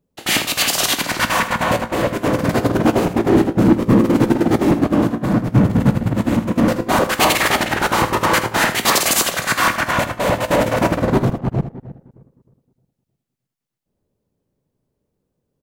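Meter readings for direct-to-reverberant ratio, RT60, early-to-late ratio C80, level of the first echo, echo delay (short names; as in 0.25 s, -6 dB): none, none, none, -12.0 dB, 80 ms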